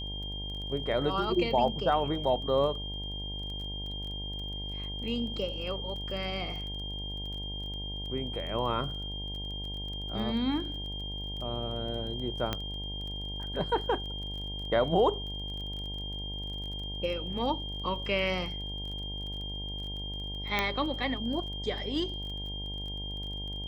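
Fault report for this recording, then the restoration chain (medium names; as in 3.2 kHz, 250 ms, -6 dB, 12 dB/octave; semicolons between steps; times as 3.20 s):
buzz 50 Hz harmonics 19 -39 dBFS
crackle 23 per s -39 dBFS
whine 3.2 kHz -38 dBFS
12.53 s: pop -15 dBFS
20.59 s: pop -13 dBFS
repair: de-click; de-hum 50 Hz, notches 19; band-stop 3.2 kHz, Q 30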